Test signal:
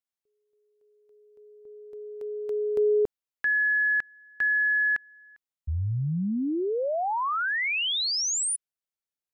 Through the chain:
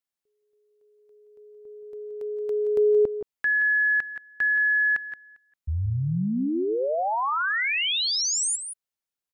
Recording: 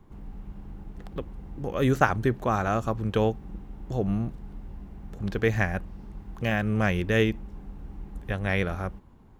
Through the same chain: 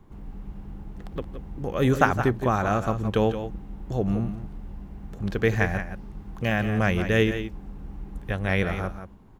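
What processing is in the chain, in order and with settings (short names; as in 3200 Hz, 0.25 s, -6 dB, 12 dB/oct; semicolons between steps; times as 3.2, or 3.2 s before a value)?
tapped delay 0.159/0.174 s -17/-10 dB; gain +1.5 dB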